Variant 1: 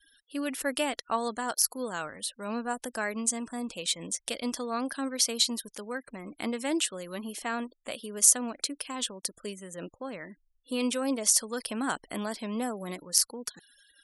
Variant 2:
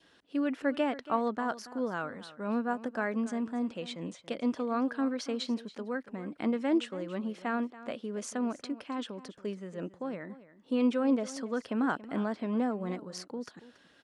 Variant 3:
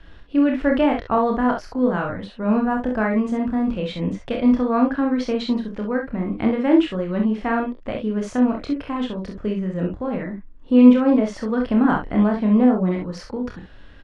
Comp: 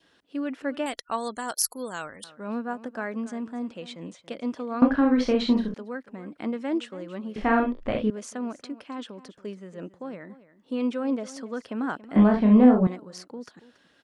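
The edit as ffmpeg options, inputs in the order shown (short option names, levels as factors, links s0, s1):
-filter_complex "[2:a]asplit=3[s0][s1][s2];[1:a]asplit=5[s3][s4][s5][s6][s7];[s3]atrim=end=0.862[s8];[0:a]atrim=start=0.858:end=2.242[s9];[s4]atrim=start=2.238:end=4.822[s10];[s0]atrim=start=4.818:end=5.742[s11];[s5]atrim=start=5.738:end=7.362[s12];[s1]atrim=start=7.358:end=8.102[s13];[s6]atrim=start=8.098:end=12.162[s14];[s2]atrim=start=12.158:end=12.872[s15];[s7]atrim=start=12.868[s16];[s8][s9]acrossfade=d=0.004:c1=hsin:c2=hsin[s17];[s17][s10]acrossfade=d=0.004:c1=hsin:c2=hsin[s18];[s18][s11]acrossfade=d=0.004:c1=hsin:c2=hsin[s19];[s19][s12]acrossfade=d=0.004:c1=hsin:c2=hsin[s20];[s20][s13]acrossfade=d=0.004:c1=hsin:c2=hsin[s21];[s21][s14]acrossfade=d=0.004:c1=hsin:c2=hsin[s22];[s22][s15]acrossfade=d=0.004:c1=hsin:c2=hsin[s23];[s23][s16]acrossfade=d=0.004:c1=hsin:c2=hsin"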